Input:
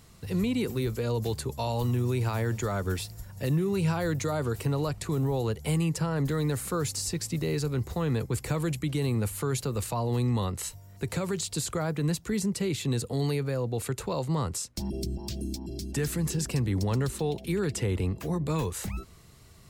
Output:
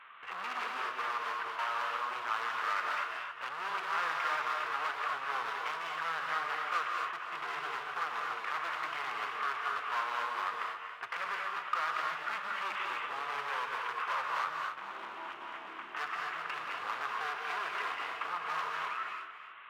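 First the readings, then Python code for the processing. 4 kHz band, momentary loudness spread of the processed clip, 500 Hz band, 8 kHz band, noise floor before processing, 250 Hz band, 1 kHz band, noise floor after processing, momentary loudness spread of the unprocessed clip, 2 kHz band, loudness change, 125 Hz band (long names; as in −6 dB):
−3.5 dB, 6 LU, −16.0 dB, −21.0 dB, −52 dBFS, −30.0 dB, +6.0 dB, −47 dBFS, 6 LU, +7.0 dB, −5.5 dB, below −35 dB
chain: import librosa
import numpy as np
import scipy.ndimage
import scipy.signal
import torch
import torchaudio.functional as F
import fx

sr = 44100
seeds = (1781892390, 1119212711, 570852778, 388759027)

p1 = fx.cvsd(x, sr, bps=16000)
p2 = np.clip(p1, -10.0 ** (-35.0 / 20.0), 10.0 ** (-35.0 / 20.0))
p3 = fx.highpass_res(p2, sr, hz=1200.0, q=3.5)
p4 = p3 + fx.echo_single(p3, sr, ms=278, db=-11.5, dry=0)
p5 = fx.rev_gated(p4, sr, seeds[0], gate_ms=270, shape='rising', drr_db=0.5)
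y = F.gain(torch.from_numpy(p5), 2.5).numpy()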